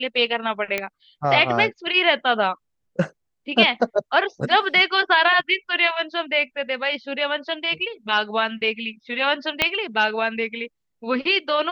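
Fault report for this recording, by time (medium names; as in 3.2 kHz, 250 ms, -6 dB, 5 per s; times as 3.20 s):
0.78 s: pop -9 dBFS
9.62 s: pop -4 dBFS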